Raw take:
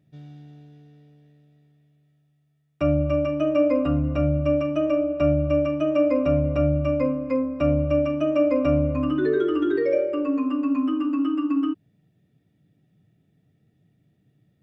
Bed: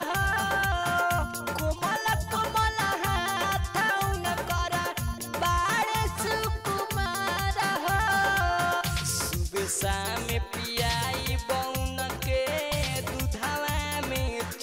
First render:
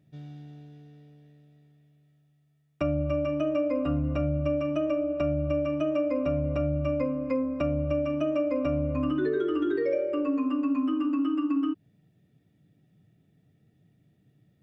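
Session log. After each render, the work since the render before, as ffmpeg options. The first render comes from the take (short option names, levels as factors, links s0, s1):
-af "alimiter=limit=0.2:level=0:latency=1:release=390,acompressor=threshold=0.0501:ratio=2"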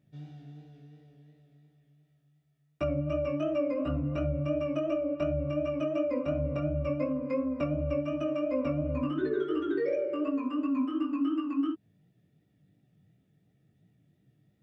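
-af "flanger=delay=15:depth=6.5:speed=2.8"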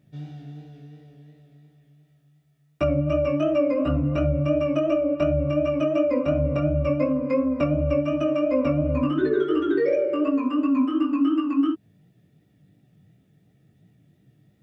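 -af "volume=2.51"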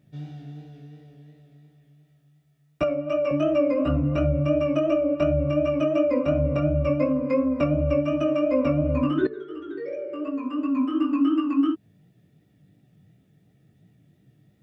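-filter_complex "[0:a]asettb=1/sr,asplit=3[s0][s1][s2];[s0]atrim=end=2.834[s3];[s1]atrim=start=2.83:end=3.31,asetpts=PTS-STARTPTS,afade=t=in:d=0.004:c=qsin,afade=t=out:st=0.476:d=0.004:c=qsin,highpass=360[s4];[s2]atrim=start=3.306[s5];[s3][s4]acrossfade=d=0.004:c1=hsin:c2=qsin[s6];[s6][s5]acrossfade=d=0.004:c1=qsin:c2=hsin,asplit=2[s7][s8];[s7]atrim=end=9.27,asetpts=PTS-STARTPTS,afade=t=out:st=9.266:d=0.004:c=hsin:silence=0.188365[s9];[s8]atrim=start=9.27,asetpts=PTS-STARTPTS,afade=t=in:d=1.83:c=qua:silence=0.188365[s10];[s9][s10]concat=n=2:v=0:a=1"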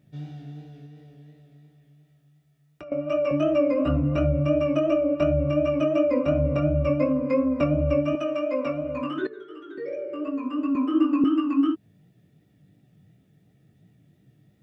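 -filter_complex "[0:a]asettb=1/sr,asplit=3[s0][s1][s2];[s0]atrim=end=0.864[s3];[s1]atrim=start=0.86:end=2.92,asetpts=PTS-STARTPTS,afade=t=in:d=0.004:c=qsin,afade=t=out:st=2.056:d=0.004:c=qsin,acompressor=threshold=0.00794:ratio=4:attack=3.2:release=140:knee=1:detection=peak[s4];[s2]atrim=start=2.916[s5];[s3][s4]acrossfade=d=0.004:c1=hsin:c2=qsin[s6];[s6][s5]acrossfade=d=0.004:c1=qsin:c2=hsin,asettb=1/sr,asplit=3[s7][s8][s9];[s7]atrim=end=8.154[s10];[s8]atrim=start=8.15:end=9.78,asetpts=PTS-STARTPTS,afade=t=in:d=0.004:c=qsin,afade=t=out:st=1.626:d=0.004:c=qsin,highpass=f=600:p=1[s11];[s9]atrim=start=9.776[s12];[s10][s11]acrossfade=d=0.004:c1=hsin:c2=qsin[s13];[s13][s12]acrossfade=d=0.004:c1=qsin:c2=hsin,asettb=1/sr,asplit=3[s14][s15][s16];[s14]atrim=end=10.754[s17];[s15]atrim=start=10.75:end=11.24,asetpts=PTS-STARTPTS,afade=t=in:d=0.004:c=qsin,afade=t=out:st=0.486:d=0.004:c=qsin,highpass=f=370:t=q:w=2.2[s18];[s16]atrim=start=11.236[s19];[s17][s18]acrossfade=d=0.004:c1=hsin:c2=qsin[s20];[s20][s19]acrossfade=d=0.004:c1=qsin:c2=hsin"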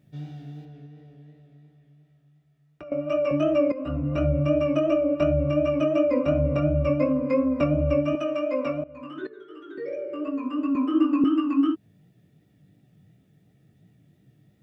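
-filter_complex "[0:a]asettb=1/sr,asplit=3[s0][s1][s2];[s0]atrim=end=0.654[s3];[s1]atrim=start=0.65:end=2.85,asetpts=PTS-STARTPTS,afade=t=in:d=0.004:c=qsin,afade=t=out:st=2.196:d=0.004:c=qsin,highshelf=f=4600:g=-11.5[s4];[s2]atrim=start=2.846[s5];[s3][s4]acrossfade=d=0.004:c1=hsin:c2=qsin[s6];[s6][s5]acrossfade=d=0.004:c1=qsin:c2=hsin,asplit=3[s7][s8][s9];[s7]atrim=end=3.72,asetpts=PTS-STARTPTS,afade=t=out:st=3.716:d=0.004:c=hsin:silence=0.237137[s10];[s8]atrim=start=3.72:end=8.84,asetpts=PTS-STARTPTS,afade=t=in:d=0.59:silence=0.237137,afade=t=out:st=5.116:d=0.004:c=hsin:silence=0.125893[s11];[s9]atrim=start=8.84,asetpts=PTS-STARTPTS,afade=t=in:d=0.92:silence=0.125893[s12];[s10][s11][s12]concat=n=3:v=0:a=1"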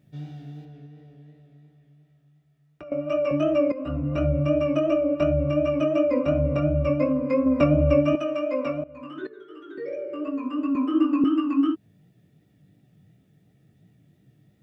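-filter_complex "[0:a]asplit=3[s0][s1][s2];[s0]atrim=end=7.462[s3];[s1]atrim=start=7.458:end=8.162,asetpts=PTS-STARTPTS,volume=1.5[s4];[s2]atrim=start=8.158[s5];[s3][s4]acrossfade=d=0.004:c1=hsin:c2=hsin[s6];[s6][s5]acrossfade=d=0.004:c1=hsin:c2=hsin"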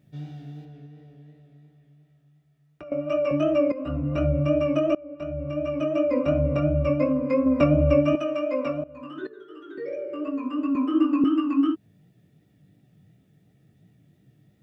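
-filter_complex "[0:a]asettb=1/sr,asplit=3[s0][s1][s2];[s0]atrim=end=8.684[s3];[s1]atrim=start=8.68:end=9.65,asetpts=PTS-STARTPTS,afade=t=in:d=0.004:c=qsin,afade=t=out:st=0.966:d=0.004:c=qsin,bandreject=f=2200:w=7.4[s4];[s2]atrim=start=9.646[s5];[s3][s4]acrossfade=d=0.004:c1=hsin:c2=qsin[s6];[s6][s5]acrossfade=d=0.004:c1=qsin:c2=hsin,asplit=2[s7][s8];[s7]atrim=end=4.95,asetpts=PTS-STARTPTS,afade=t=out:st=4.946:d=0.004:c=hsin:silence=0.0668344[s9];[s8]atrim=start=4.95,asetpts=PTS-STARTPTS,afade=t=in:d=1.29:silence=0.0668344[s10];[s9][s10]concat=n=2:v=0:a=1"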